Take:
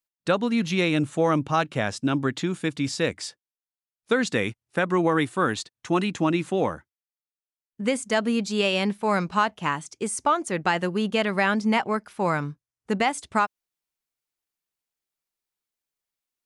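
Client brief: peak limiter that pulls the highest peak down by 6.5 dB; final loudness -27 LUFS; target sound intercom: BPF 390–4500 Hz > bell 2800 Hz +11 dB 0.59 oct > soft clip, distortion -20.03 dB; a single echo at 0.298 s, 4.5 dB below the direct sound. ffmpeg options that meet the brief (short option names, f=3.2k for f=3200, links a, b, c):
-af "alimiter=limit=-16.5dB:level=0:latency=1,highpass=390,lowpass=4.5k,equalizer=f=2.8k:t=o:w=0.59:g=11,aecho=1:1:298:0.596,asoftclip=threshold=-15dB,volume=1dB"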